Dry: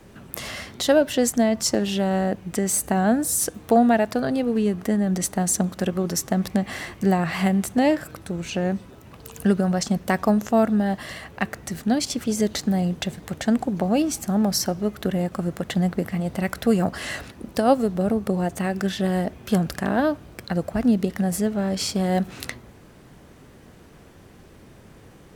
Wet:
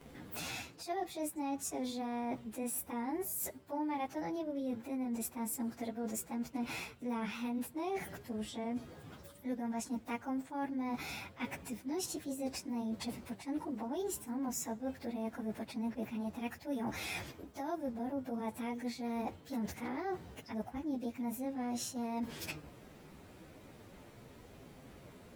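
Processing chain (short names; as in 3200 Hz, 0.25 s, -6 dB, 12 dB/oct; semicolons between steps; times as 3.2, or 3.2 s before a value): pitch shift by moving bins +4 st; reverse; compressor 5:1, threshold -34 dBFS, peak gain reduction 18 dB; reverse; gain -3 dB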